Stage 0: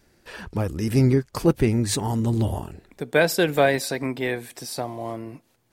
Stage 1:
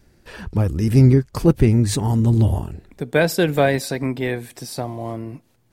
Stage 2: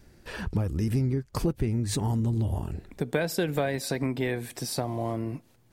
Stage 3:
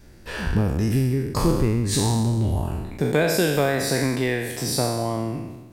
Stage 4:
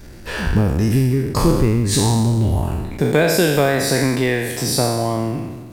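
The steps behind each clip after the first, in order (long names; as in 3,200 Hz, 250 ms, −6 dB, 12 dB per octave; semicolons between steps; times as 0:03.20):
low-shelf EQ 220 Hz +10 dB
downward compressor 6 to 1, threshold −24 dBFS, peak gain reduction 15.5 dB
peak hold with a decay on every bin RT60 1.12 s; level +4 dB
mu-law and A-law mismatch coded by mu; level +4.5 dB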